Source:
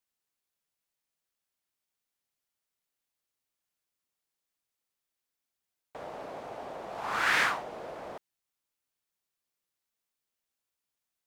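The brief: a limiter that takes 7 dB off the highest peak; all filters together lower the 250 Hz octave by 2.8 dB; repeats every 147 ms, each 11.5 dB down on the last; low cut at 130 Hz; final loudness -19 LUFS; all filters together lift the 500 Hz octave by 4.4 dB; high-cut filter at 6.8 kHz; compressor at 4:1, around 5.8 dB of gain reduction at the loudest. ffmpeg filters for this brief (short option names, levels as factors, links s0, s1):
-af "highpass=130,lowpass=6800,equalizer=f=250:t=o:g=-7,equalizer=f=500:t=o:g=7,acompressor=threshold=0.0398:ratio=4,alimiter=level_in=1.19:limit=0.0631:level=0:latency=1,volume=0.841,aecho=1:1:147|294|441:0.266|0.0718|0.0194,volume=7.94"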